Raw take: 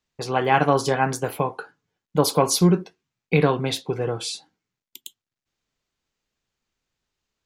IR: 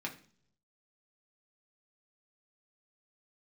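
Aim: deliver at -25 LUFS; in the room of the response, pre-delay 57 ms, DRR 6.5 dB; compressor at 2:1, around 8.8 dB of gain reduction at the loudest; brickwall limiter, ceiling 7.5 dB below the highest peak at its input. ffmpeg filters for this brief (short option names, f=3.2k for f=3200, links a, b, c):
-filter_complex "[0:a]acompressor=threshold=-29dB:ratio=2,alimiter=limit=-18.5dB:level=0:latency=1,asplit=2[a][b];[1:a]atrim=start_sample=2205,adelay=57[c];[b][c]afir=irnorm=-1:irlink=0,volume=-8dB[d];[a][d]amix=inputs=2:normalize=0,volume=5.5dB"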